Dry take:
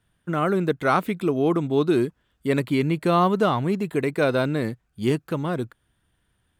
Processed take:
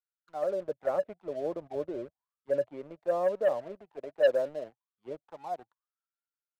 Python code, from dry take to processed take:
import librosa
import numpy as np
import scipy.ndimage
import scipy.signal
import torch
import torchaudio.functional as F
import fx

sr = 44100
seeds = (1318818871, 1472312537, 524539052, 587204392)

y = fx.auto_wah(x, sr, base_hz=570.0, top_hz=1400.0, q=18.0, full_db=-18.5, direction='down')
y = fx.leveller(y, sr, passes=2)
y = fx.peak_eq(y, sr, hz=84.0, db=9.5, octaves=1.8, at=(0.65, 2.7))
y = fx.band_widen(y, sr, depth_pct=40)